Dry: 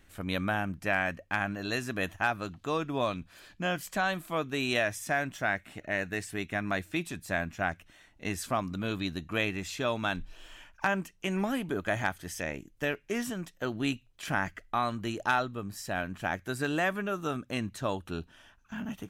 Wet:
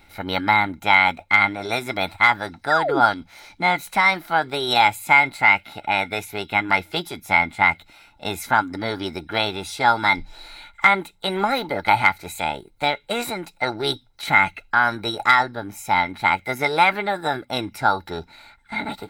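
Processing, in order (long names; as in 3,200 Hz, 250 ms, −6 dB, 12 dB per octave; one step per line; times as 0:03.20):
formants moved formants +5 semitones
hollow resonant body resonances 860/1,400/2,100/3,900 Hz, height 16 dB, ringing for 30 ms
sound drawn into the spectrogram fall, 0:02.70–0:03.01, 240–2,000 Hz −27 dBFS
level +4.5 dB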